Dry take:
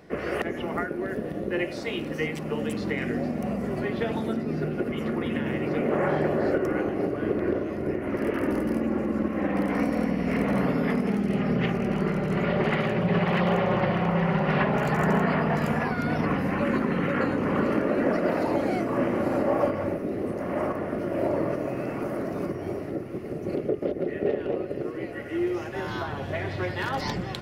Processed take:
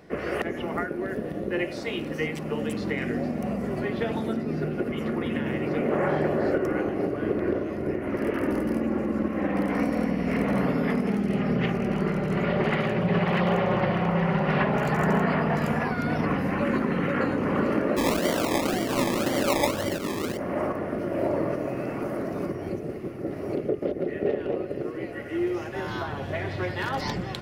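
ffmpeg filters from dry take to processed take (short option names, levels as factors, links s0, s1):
-filter_complex "[0:a]asplit=3[s0][s1][s2];[s0]afade=t=out:st=17.96:d=0.02[s3];[s1]acrusher=samples=24:mix=1:aa=0.000001:lfo=1:lforange=14.4:lforate=1.9,afade=t=in:st=17.96:d=0.02,afade=t=out:st=20.36:d=0.02[s4];[s2]afade=t=in:st=20.36:d=0.02[s5];[s3][s4][s5]amix=inputs=3:normalize=0,asplit=3[s6][s7][s8];[s6]atrim=end=22.692[s9];[s7]atrim=start=22.688:end=23.532,asetpts=PTS-STARTPTS,areverse[s10];[s8]atrim=start=23.528[s11];[s9][s10]acrossfade=d=0.004:c1=hsin:c2=hsin[s12];[s12][s11]acrossfade=d=0.004:c1=hsin:c2=hsin"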